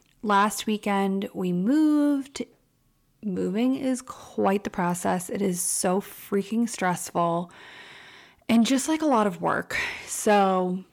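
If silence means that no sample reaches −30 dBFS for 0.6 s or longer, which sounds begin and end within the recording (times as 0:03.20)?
0:03.26–0:07.44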